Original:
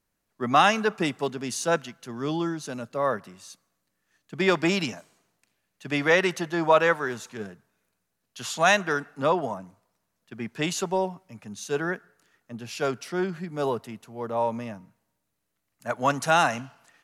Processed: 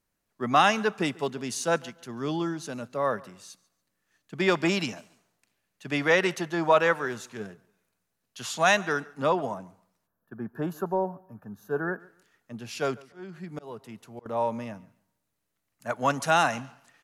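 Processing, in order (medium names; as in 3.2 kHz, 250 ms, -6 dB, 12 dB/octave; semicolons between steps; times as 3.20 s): 10.07–12.00 s: time-frequency box 1.8–11 kHz -22 dB; 12.96–14.26 s: slow attack 464 ms; on a send: feedback delay 142 ms, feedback 26%, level -23.5 dB; on the sum: trim -1.5 dB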